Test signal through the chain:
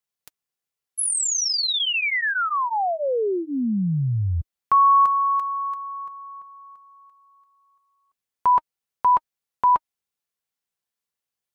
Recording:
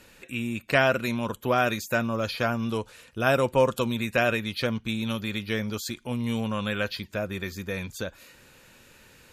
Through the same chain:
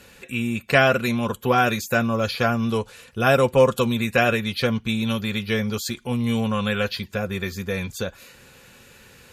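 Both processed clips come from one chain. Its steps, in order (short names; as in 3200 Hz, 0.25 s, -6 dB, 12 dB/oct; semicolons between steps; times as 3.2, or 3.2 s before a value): notch comb 310 Hz; gain +6 dB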